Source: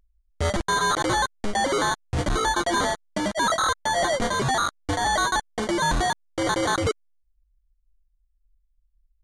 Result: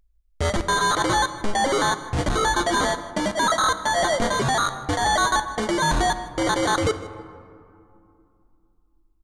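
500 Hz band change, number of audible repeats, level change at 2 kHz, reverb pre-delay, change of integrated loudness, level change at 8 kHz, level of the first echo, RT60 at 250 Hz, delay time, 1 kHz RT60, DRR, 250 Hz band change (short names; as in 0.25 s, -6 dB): +2.0 dB, 1, +2.0 dB, 5 ms, +2.0 dB, +2.0 dB, -18.5 dB, 3.4 s, 0.157 s, 2.6 s, 10.5 dB, +2.0 dB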